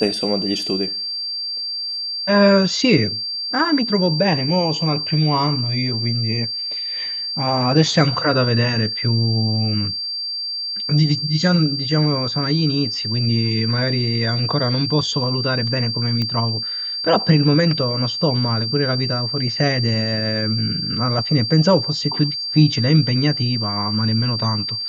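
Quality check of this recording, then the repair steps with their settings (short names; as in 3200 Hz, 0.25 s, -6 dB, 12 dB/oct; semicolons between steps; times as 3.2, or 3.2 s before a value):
tone 4700 Hz -23 dBFS
16.22 pop -12 dBFS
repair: de-click; notch 4700 Hz, Q 30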